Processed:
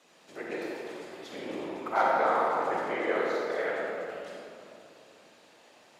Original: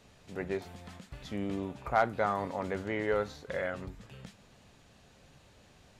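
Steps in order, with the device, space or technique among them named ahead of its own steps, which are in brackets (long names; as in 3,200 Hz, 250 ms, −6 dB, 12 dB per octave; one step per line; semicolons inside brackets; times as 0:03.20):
whispering ghost (random phases in short frames; high-pass filter 420 Hz 12 dB per octave; convolution reverb RT60 2.8 s, pre-delay 39 ms, DRR −3.5 dB)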